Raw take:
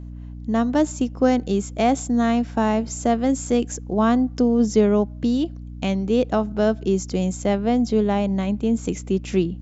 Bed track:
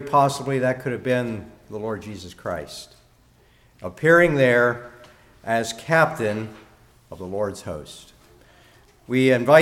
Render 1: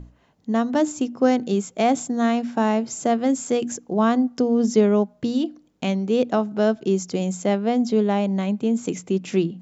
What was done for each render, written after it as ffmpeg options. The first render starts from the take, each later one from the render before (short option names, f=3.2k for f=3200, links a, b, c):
-af "bandreject=f=60:t=h:w=6,bandreject=f=120:t=h:w=6,bandreject=f=180:t=h:w=6,bandreject=f=240:t=h:w=6,bandreject=f=300:t=h:w=6"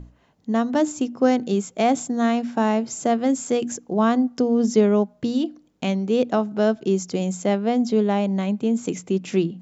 -af anull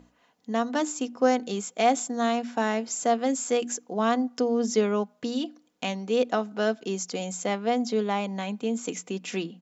-af "highpass=f=730:p=1,aecho=1:1:4.1:0.39"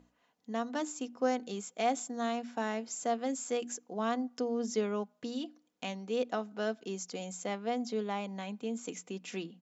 -af "volume=-8.5dB"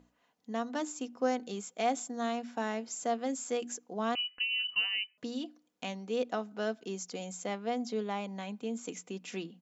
-filter_complex "[0:a]asettb=1/sr,asplit=3[a][b][c];[a]atrim=end=4.154[d];[b]atrim=start=4.15:end=5.18,asetpts=PTS-STARTPTS,afade=t=in:d=0.004:c=qsin,afade=t=out:st=1.026:d=0.004:c=qsin,lowpass=f=2.7k:t=q:w=0.5098,lowpass=f=2.7k:t=q:w=0.6013,lowpass=f=2.7k:t=q:w=0.9,lowpass=f=2.7k:t=q:w=2.563,afreqshift=-3200[e];[c]atrim=start=5.176[f];[d][e]acrossfade=d=0.004:c1=hsin:c2=qsin[g];[g][f]acrossfade=d=0.004:c1=qsin:c2=hsin"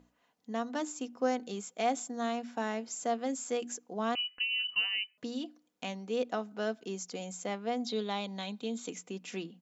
-filter_complex "[0:a]asettb=1/sr,asplit=3[a][b][c];[a]atrim=end=7.844[d];[b]atrim=start=7.84:end=8.88,asetpts=PTS-STARTPTS,afade=t=in:d=0.004:c=qsin,afade=t=out:st=1.036:d=0.004:c=qsin,equalizer=f=3.8k:w=3.1:g=15[e];[c]atrim=start=8.876[f];[d][e]acrossfade=d=0.004:c1=hsin:c2=qsin[g];[g][f]acrossfade=d=0.004:c1=qsin:c2=hsin"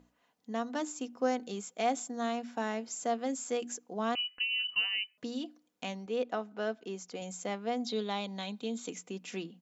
-filter_complex "[0:a]asettb=1/sr,asplit=3[a][b][c];[a]atrim=end=6.064[d];[b]atrim=start=6.06:end=7.22,asetpts=PTS-STARTPTS,afade=t=in:d=0.004:c=qsin,afade=t=out:st=1.156:d=0.004:c=qsin,bass=f=250:g=-4,treble=f=4k:g=-7[e];[c]atrim=start=7.216[f];[d][e]acrossfade=d=0.004:c1=hsin:c2=qsin[g];[g][f]acrossfade=d=0.004:c1=qsin:c2=hsin"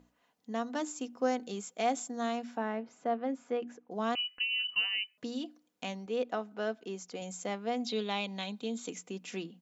-filter_complex "[0:a]asettb=1/sr,asplit=3[a][b][c];[a]atrim=end=2.574[d];[b]atrim=start=2.57:end=3.91,asetpts=PTS-STARTPTS,afade=t=in:d=0.004:c=qsin,afade=t=out:st=1.336:d=0.004:c=qsin,lowpass=2k[e];[c]atrim=start=3.906[f];[d][e]acrossfade=d=0.004:c1=hsin:c2=qsin[g];[g][f]acrossfade=d=0.004:c1=qsin:c2=hsin,asettb=1/sr,asplit=3[h][i][j];[h]atrim=end=7.744[k];[i]atrim=start=7.74:end=8.44,asetpts=PTS-STARTPTS,afade=t=in:d=0.004:c=qsin,afade=t=out:st=0.696:d=0.004:c=qsin,equalizer=f=2.6k:w=3.1:g=8.5[l];[j]atrim=start=8.436[m];[k][l]acrossfade=d=0.004:c1=hsin:c2=qsin[n];[n][m]acrossfade=d=0.004:c1=qsin:c2=hsin"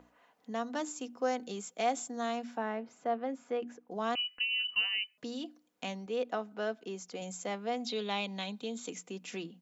-filter_complex "[0:a]acrossover=split=370|2500[a][b][c];[a]alimiter=level_in=13.5dB:limit=-24dB:level=0:latency=1,volume=-13.5dB[d];[b]acompressor=mode=upward:threshold=-56dB:ratio=2.5[e];[d][e][c]amix=inputs=3:normalize=0"